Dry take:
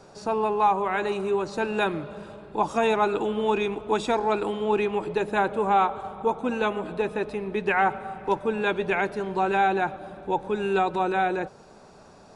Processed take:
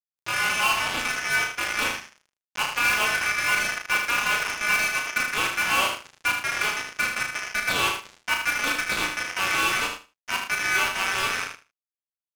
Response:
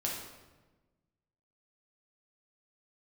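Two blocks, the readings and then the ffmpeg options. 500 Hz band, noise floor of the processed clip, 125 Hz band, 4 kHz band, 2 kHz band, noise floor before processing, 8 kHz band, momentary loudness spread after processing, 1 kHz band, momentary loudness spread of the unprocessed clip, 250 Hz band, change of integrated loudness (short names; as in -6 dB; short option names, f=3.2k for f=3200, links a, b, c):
-13.5 dB, under -85 dBFS, -6.0 dB, +12.5 dB, +9.0 dB, -50 dBFS, n/a, 6 LU, -4.0 dB, 7 LU, -11.0 dB, +2.0 dB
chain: -filter_complex "[0:a]adynamicequalizer=threshold=0.0112:dfrequency=450:dqfactor=2.3:tfrequency=450:tqfactor=2.3:attack=5:release=100:ratio=0.375:range=2.5:mode=boostabove:tftype=bell,asplit=2[a][b];[b]asoftclip=type=tanh:threshold=-26.5dB,volume=-9dB[c];[a][c]amix=inputs=2:normalize=0,aeval=exprs='val(0)+0.00562*sin(2*PI*400*n/s)':c=same,aeval=exprs='val(0)*sin(2*PI*1900*n/s)':c=same,acrossover=split=220|4600[d][e][f];[f]aeval=exprs='sgn(val(0))*max(abs(val(0))-0.00126,0)':c=same[g];[d][e][g]amix=inputs=3:normalize=0,tremolo=f=270:d=0.621,acrusher=bits=3:mix=0:aa=0.5,asplit=2[h][i];[i]adelay=34,volume=-5dB[j];[h][j]amix=inputs=2:normalize=0,aecho=1:1:77|154|231:0.473|0.0852|0.0153"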